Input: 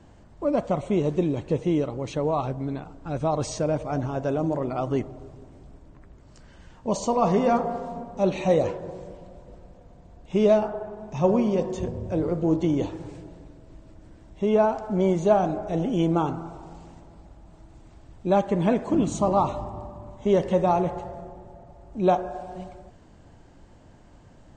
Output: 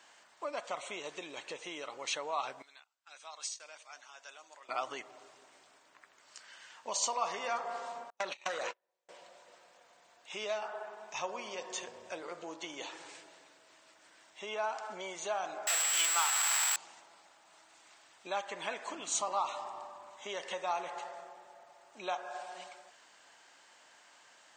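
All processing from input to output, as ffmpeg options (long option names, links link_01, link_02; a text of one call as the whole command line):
ffmpeg -i in.wav -filter_complex "[0:a]asettb=1/sr,asplit=3[link_01][link_02][link_03];[link_01]atrim=end=2.624[link_04];[link_02]atrim=start=2.62:end=4.69,asetpts=PTS-STARTPTS,afade=type=in:duration=0.004:curve=qsin,afade=type=out:start_time=2.066:duration=0.004:curve=qsin,lowpass=frequency=3500:poles=1,agate=range=-17dB:threshold=-37dB:ratio=16:release=100:detection=peak,aderivative[link_05];[link_03]atrim=start=4.686[link_06];[link_04][link_05]acrossfade=duration=0.004:curve1=hsin:curve2=qsin[link_07];[link_07][link_06]acrossfade=duration=0.004:curve1=qsin:curve2=hsin,asettb=1/sr,asplit=3[link_08][link_09][link_10];[link_08]atrim=end=8.104[link_11];[link_09]atrim=start=8.1:end=9.09,asetpts=PTS-STARTPTS,afade=type=in:duration=0.004:curve=qsin,afade=type=out:start_time=0.986:duration=0.004:curve=qsin,agate=range=-47dB:threshold=-28dB:ratio=16:release=100:detection=peak,acompressor=threshold=-27dB:ratio=12:attack=3.2:release=140:knee=1:detection=peak,aeval=exprs='0.1*sin(PI/2*1.78*val(0)/0.1)':channel_layout=same[link_12];[link_10]atrim=start=9.086[link_13];[link_11][link_12]acrossfade=duration=0.004:curve1=hsin:curve2=qsin[link_14];[link_14][link_13]acrossfade=duration=0.004:curve1=qsin:curve2=hsin,asettb=1/sr,asplit=3[link_15][link_16][link_17];[link_15]atrim=end=15.674[link_18];[link_16]atrim=start=15.67:end=16.76,asetpts=PTS-STARTPTS,afade=type=in:duration=0.004:curve=qsin,afade=type=out:start_time=1.086:duration=0.004:curve=qsin,aeval=exprs='val(0)+0.5*0.0501*sgn(val(0))':channel_layout=same,highpass=1000,aeval=exprs='val(0)+0.0158*sin(2*PI*7700*n/s)':channel_layout=same[link_19];[link_17]atrim=start=16.756[link_20];[link_18][link_19]acrossfade=duration=0.004:curve1=hsin:curve2=qsin[link_21];[link_21][link_20]acrossfade=duration=0.004:curve1=qsin:curve2=hsin,acompressor=threshold=-26dB:ratio=3,highpass=1500,volume=6.5dB" out.wav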